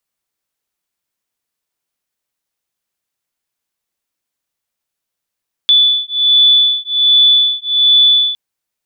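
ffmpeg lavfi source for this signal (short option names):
-f lavfi -i "aevalsrc='0.282*(sin(2*PI*3470*t)+sin(2*PI*3471.3*t))':d=2.66:s=44100"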